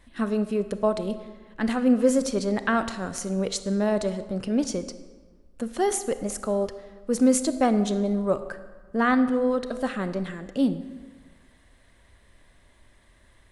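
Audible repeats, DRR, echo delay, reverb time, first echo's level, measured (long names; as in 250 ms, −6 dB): no echo audible, 11.0 dB, no echo audible, 1.5 s, no echo audible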